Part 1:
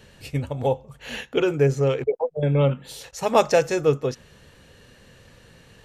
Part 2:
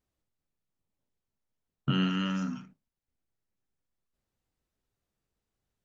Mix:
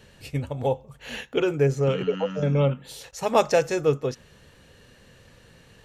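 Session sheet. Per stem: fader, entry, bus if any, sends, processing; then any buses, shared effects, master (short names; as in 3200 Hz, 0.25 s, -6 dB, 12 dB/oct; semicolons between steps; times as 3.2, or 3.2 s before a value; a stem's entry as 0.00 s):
-2.0 dB, 0.00 s, no send, dry
+1.5 dB, 0.00 s, no send, compressor 2.5:1, threshold -35 dBFS, peak gain reduction 8.5 dB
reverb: off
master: dry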